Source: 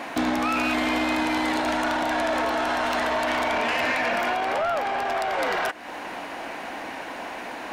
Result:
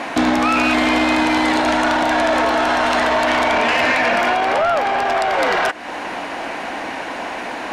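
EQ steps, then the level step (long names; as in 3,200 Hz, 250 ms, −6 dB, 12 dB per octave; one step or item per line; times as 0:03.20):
low-pass filter 9,800 Hz 12 dB per octave
+8.0 dB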